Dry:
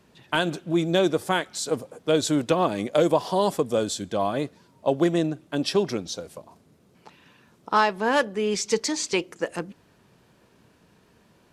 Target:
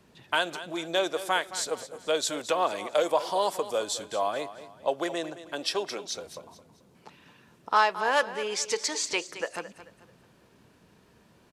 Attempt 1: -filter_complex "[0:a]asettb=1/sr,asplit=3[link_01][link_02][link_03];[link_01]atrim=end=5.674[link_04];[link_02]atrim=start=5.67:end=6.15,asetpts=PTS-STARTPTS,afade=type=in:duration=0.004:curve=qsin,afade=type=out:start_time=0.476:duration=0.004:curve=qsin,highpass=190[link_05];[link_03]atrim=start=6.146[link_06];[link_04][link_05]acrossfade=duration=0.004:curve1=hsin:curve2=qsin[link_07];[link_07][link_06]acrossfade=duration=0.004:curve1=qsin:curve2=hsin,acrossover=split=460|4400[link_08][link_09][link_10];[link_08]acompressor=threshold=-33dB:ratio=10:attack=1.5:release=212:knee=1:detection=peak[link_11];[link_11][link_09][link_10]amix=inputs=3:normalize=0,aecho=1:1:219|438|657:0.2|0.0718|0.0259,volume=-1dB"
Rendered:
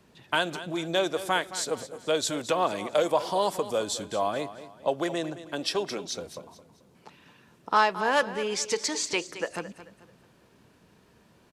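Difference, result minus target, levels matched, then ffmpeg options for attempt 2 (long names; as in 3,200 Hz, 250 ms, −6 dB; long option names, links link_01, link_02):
downward compressor: peak gain reduction −10.5 dB
-filter_complex "[0:a]asettb=1/sr,asplit=3[link_01][link_02][link_03];[link_01]atrim=end=5.674[link_04];[link_02]atrim=start=5.67:end=6.15,asetpts=PTS-STARTPTS,afade=type=in:duration=0.004:curve=qsin,afade=type=out:start_time=0.476:duration=0.004:curve=qsin,highpass=190[link_05];[link_03]atrim=start=6.146[link_06];[link_04][link_05]acrossfade=duration=0.004:curve1=hsin:curve2=qsin[link_07];[link_07][link_06]acrossfade=duration=0.004:curve1=qsin:curve2=hsin,acrossover=split=460|4400[link_08][link_09][link_10];[link_08]acompressor=threshold=-44.5dB:ratio=10:attack=1.5:release=212:knee=1:detection=peak[link_11];[link_11][link_09][link_10]amix=inputs=3:normalize=0,aecho=1:1:219|438|657:0.2|0.0718|0.0259,volume=-1dB"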